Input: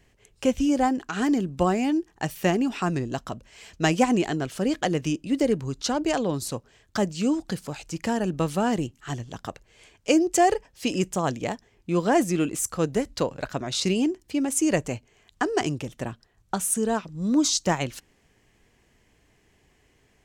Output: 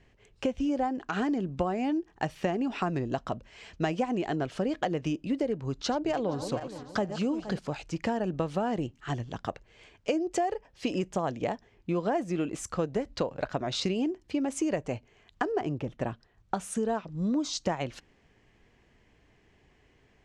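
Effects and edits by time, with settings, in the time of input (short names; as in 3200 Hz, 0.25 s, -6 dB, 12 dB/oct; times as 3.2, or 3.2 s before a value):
5.66–7.59 regenerating reverse delay 0.235 s, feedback 56%, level -12.5 dB
15.52–16.01 high shelf 2600 Hz -10.5 dB
whole clip: Bessel low-pass 3700 Hz, order 2; dynamic EQ 650 Hz, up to +5 dB, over -38 dBFS, Q 1.2; compressor 6:1, threshold -26 dBFS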